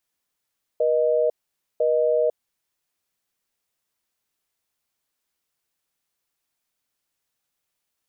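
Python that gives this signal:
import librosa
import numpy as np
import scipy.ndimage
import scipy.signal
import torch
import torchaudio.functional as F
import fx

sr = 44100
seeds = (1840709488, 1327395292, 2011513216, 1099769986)

y = fx.call_progress(sr, length_s=1.72, kind='busy tone', level_db=-20.0)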